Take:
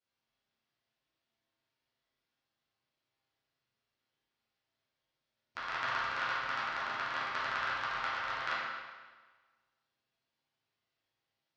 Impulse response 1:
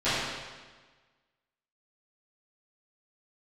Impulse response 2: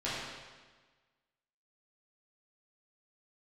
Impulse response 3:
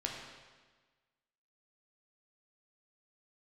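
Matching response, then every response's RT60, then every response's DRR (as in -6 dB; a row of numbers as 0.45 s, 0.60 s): 2; 1.4 s, 1.4 s, 1.4 s; -18.0 dB, -10.5 dB, -1.0 dB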